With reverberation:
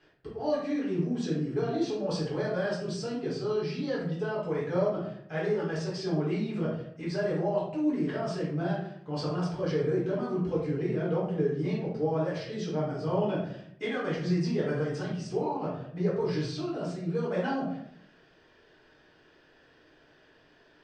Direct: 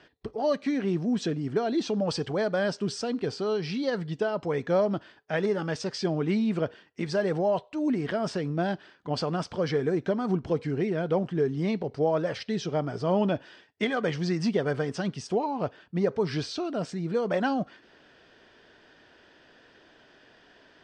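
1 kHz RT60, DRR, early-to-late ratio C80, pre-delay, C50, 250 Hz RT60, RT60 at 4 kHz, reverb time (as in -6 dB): 0.65 s, -7.0 dB, 7.0 dB, 5 ms, 2.5 dB, 0.85 s, 0.40 s, 0.65 s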